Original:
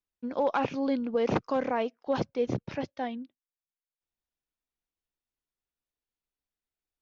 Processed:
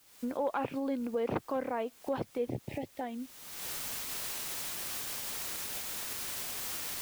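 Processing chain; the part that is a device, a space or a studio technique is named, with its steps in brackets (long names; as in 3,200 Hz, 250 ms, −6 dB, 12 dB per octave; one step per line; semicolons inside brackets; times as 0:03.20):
parametric band 180 Hz −5 dB 0.6 octaves
0:02.50–0:03.01: elliptic band-stop filter 850–1,900 Hz
high-frequency loss of the air 220 metres
cheap recorder with automatic gain (white noise bed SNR 25 dB; camcorder AGC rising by 42 dB per second)
level −4.5 dB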